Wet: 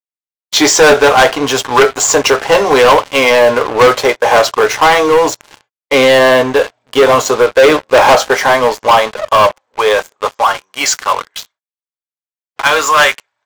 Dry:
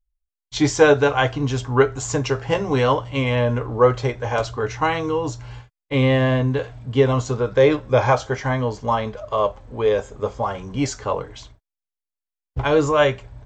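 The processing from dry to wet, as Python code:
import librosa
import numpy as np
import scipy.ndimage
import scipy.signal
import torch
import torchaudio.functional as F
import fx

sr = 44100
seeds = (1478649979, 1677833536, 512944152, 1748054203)

y = fx.filter_sweep_highpass(x, sr, from_hz=540.0, to_hz=1300.0, start_s=8.24, end_s=11.09, q=0.94)
y = fx.leveller(y, sr, passes=5)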